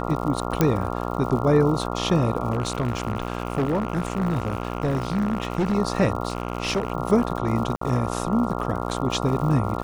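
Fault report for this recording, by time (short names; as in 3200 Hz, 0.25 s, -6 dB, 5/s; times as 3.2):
buzz 60 Hz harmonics 23 -28 dBFS
crackle 110/s -32 dBFS
0.61 pop -5 dBFS
2.52–5.75 clipped -18.5 dBFS
6.28–6.92 clipped -18.5 dBFS
7.76–7.81 gap 54 ms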